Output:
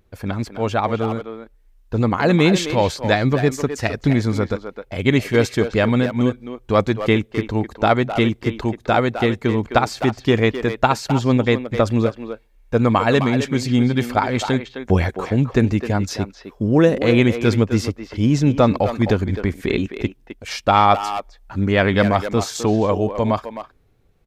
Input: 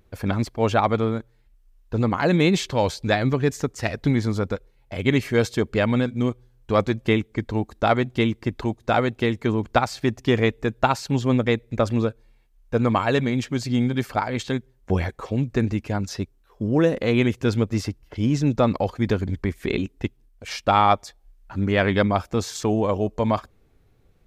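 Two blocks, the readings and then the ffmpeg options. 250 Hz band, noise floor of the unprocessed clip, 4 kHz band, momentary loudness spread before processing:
+4.0 dB, -59 dBFS, +4.0 dB, 8 LU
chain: -filter_complex "[0:a]asplit=2[s0][s1];[s1]adelay=260,highpass=300,lowpass=3400,asoftclip=type=hard:threshold=0.2,volume=0.398[s2];[s0][s2]amix=inputs=2:normalize=0,dynaudnorm=f=130:g=21:m=3.76,volume=0.891"

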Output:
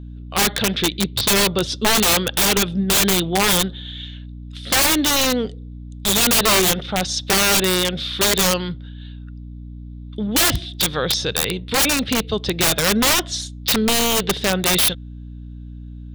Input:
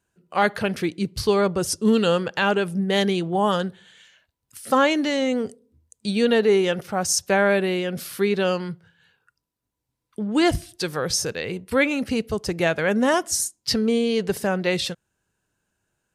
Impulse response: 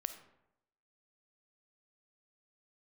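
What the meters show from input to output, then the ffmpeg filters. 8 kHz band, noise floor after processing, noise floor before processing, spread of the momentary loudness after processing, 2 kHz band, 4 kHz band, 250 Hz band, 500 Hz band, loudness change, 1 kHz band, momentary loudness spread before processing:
+10.5 dB, -35 dBFS, -81 dBFS, 22 LU, +4.5 dB, +11.0 dB, +0.5 dB, -2.0 dB, +5.0 dB, +2.5 dB, 10 LU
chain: -af "lowpass=f=3600:t=q:w=13,aeval=exprs='(mod(4.73*val(0)+1,2)-1)/4.73':c=same,aeval=exprs='val(0)+0.0158*(sin(2*PI*60*n/s)+sin(2*PI*2*60*n/s)/2+sin(2*PI*3*60*n/s)/3+sin(2*PI*4*60*n/s)/4+sin(2*PI*5*60*n/s)/5)':c=same,volume=1.41"

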